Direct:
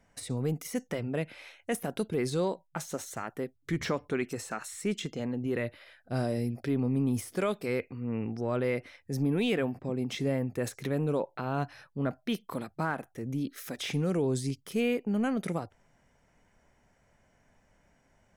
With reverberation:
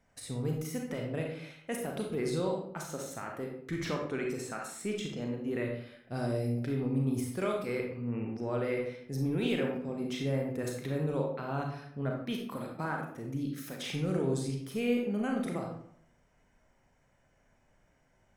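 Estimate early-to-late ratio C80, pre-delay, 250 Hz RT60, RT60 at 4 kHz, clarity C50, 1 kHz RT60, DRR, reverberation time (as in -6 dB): 7.5 dB, 32 ms, 0.70 s, 0.45 s, 3.5 dB, 0.65 s, 0.5 dB, 0.65 s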